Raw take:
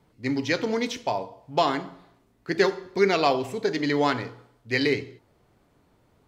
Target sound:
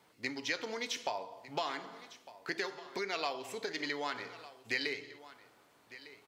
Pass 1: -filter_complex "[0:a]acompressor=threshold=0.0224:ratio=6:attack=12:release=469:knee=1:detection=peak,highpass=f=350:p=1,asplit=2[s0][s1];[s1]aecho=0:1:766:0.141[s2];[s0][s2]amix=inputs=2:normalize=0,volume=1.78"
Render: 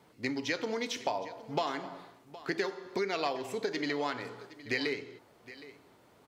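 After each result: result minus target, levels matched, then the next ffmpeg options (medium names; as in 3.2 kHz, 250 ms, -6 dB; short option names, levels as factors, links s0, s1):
echo 438 ms early; 250 Hz band +4.5 dB
-filter_complex "[0:a]acompressor=threshold=0.0224:ratio=6:attack=12:release=469:knee=1:detection=peak,highpass=f=350:p=1,asplit=2[s0][s1];[s1]aecho=0:1:1204:0.141[s2];[s0][s2]amix=inputs=2:normalize=0,volume=1.78"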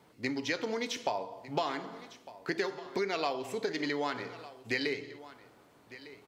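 250 Hz band +4.5 dB
-filter_complex "[0:a]acompressor=threshold=0.0224:ratio=6:attack=12:release=469:knee=1:detection=peak,highpass=f=1100:p=1,asplit=2[s0][s1];[s1]aecho=0:1:1204:0.141[s2];[s0][s2]amix=inputs=2:normalize=0,volume=1.78"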